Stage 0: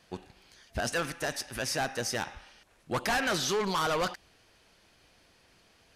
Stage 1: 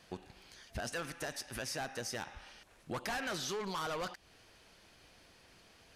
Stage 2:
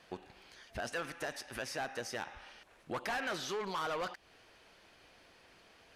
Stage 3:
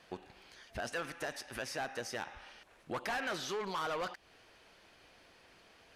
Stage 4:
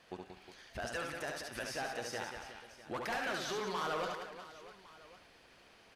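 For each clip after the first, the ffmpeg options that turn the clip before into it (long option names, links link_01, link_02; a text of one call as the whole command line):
ffmpeg -i in.wav -af "acompressor=threshold=-43dB:ratio=2.5,volume=1dB" out.wav
ffmpeg -i in.wav -af "bass=frequency=250:gain=-7,treble=frequency=4000:gain=-7,volume=2dB" out.wav
ffmpeg -i in.wav -af anull out.wav
ffmpeg -i in.wav -af "aecho=1:1:70|182|361.2|647.9|1107:0.631|0.398|0.251|0.158|0.1,volume=-2dB" out.wav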